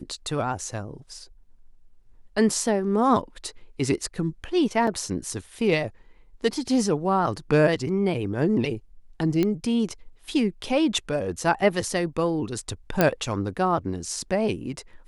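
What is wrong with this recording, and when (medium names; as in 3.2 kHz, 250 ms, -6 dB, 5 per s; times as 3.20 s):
4.87 s: dropout 4 ms
9.43 s: pop -12 dBFS
13.01 s: pop -5 dBFS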